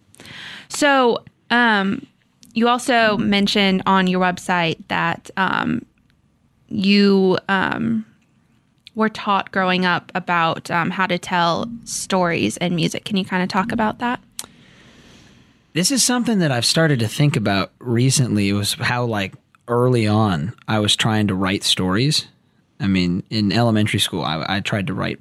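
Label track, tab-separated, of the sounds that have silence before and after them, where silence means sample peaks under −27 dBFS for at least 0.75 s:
6.710000	8.010000	sound
8.870000	14.440000	sound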